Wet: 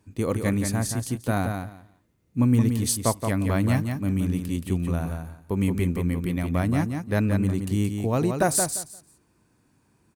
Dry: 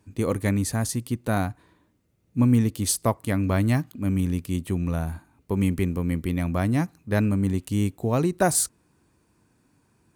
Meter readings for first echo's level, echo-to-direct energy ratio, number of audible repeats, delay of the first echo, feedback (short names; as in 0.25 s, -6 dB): -6.0 dB, -6.0 dB, 2, 0.174 s, 18%